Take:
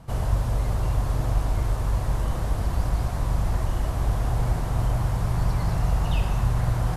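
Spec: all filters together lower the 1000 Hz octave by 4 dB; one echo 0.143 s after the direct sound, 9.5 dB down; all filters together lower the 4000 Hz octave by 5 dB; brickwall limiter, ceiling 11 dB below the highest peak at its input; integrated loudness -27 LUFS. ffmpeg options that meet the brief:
-af "equalizer=f=1k:t=o:g=-5,equalizer=f=4k:t=o:g=-6.5,alimiter=limit=-22dB:level=0:latency=1,aecho=1:1:143:0.335,volume=3.5dB"

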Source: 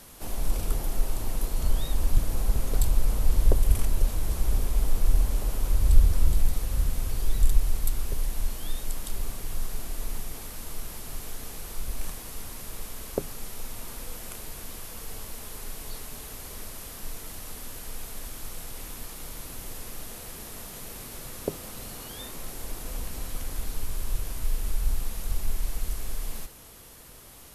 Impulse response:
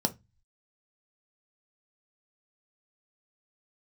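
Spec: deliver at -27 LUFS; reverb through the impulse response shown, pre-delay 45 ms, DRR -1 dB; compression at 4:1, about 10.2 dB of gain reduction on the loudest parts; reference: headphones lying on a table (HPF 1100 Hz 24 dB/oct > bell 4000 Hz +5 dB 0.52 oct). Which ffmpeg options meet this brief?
-filter_complex "[0:a]acompressor=threshold=-22dB:ratio=4,asplit=2[a][b];[1:a]atrim=start_sample=2205,adelay=45[c];[b][c]afir=irnorm=-1:irlink=0,volume=-6dB[d];[a][d]amix=inputs=2:normalize=0,highpass=f=1.1k:w=0.5412,highpass=f=1.1k:w=1.3066,equalizer=f=4k:t=o:w=0.52:g=5,volume=11dB"

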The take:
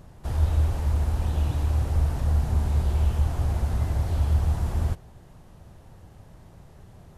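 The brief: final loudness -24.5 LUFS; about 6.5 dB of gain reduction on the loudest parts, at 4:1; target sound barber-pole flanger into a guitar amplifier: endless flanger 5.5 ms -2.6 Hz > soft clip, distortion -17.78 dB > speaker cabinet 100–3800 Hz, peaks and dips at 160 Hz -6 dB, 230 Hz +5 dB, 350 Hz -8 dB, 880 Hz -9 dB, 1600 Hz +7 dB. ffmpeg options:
-filter_complex "[0:a]acompressor=threshold=-25dB:ratio=4,asplit=2[a][b];[b]adelay=5.5,afreqshift=-2.6[c];[a][c]amix=inputs=2:normalize=1,asoftclip=threshold=-25.5dB,highpass=100,equalizer=f=160:t=q:w=4:g=-6,equalizer=f=230:t=q:w=4:g=5,equalizer=f=350:t=q:w=4:g=-8,equalizer=f=880:t=q:w=4:g=-9,equalizer=f=1.6k:t=q:w=4:g=7,lowpass=f=3.8k:w=0.5412,lowpass=f=3.8k:w=1.3066,volume=16.5dB"

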